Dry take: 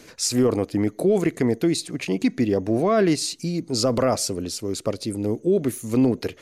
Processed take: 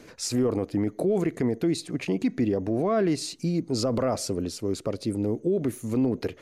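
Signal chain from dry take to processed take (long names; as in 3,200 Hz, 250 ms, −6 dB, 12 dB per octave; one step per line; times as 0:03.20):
high-shelf EQ 2,400 Hz −8.5 dB
brickwall limiter −16.5 dBFS, peak gain reduction 5.5 dB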